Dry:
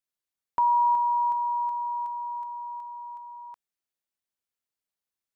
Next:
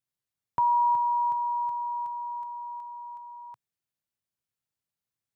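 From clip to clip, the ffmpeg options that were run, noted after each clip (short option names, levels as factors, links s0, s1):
-af "equalizer=f=120:t=o:w=1.2:g=14.5,volume=0.841"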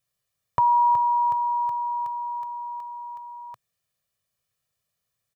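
-af "aecho=1:1:1.7:0.64,volume=2.51"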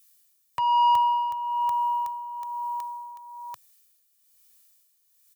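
-filter_complex "[0:a]acrossover=split=260[s0][s1];[s1]crystalizer=i=10:c=0[s2];[s0][s2]amix=inputs=2:normalize=0,asoftclip=type=tanh:threshold=0.2,tremolo=f=1.1:d=0.64,volume=0.841"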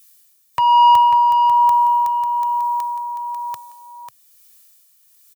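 -af "aecho=1:1:544:0.422,volume=2.82"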